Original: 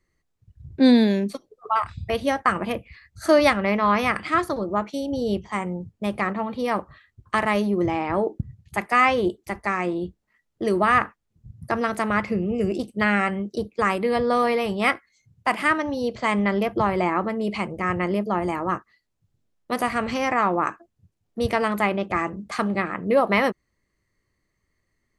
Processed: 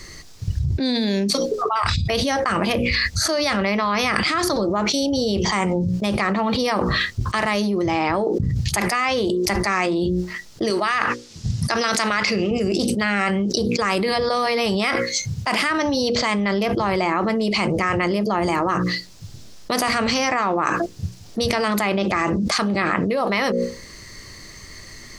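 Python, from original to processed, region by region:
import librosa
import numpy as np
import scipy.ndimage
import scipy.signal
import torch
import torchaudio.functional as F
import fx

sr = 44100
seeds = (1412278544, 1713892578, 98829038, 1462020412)

y = fx.chain(x, sr, fx.lowpass(hz=6500.0, slope=12),
    fx.tilt_eq(slope=3.0), at=(10.7, 12.51))
y = fx.peak_eq(y, sr, hz=5100.0, db=13.5, octaves=1.2)
y = fx.hum_notches(y, sr, base_hz=60, count=9)
y = fx.env_flatten(y, sr, amount_pct=100)
y = y * 10.0 ** (-8.5 / 20.0)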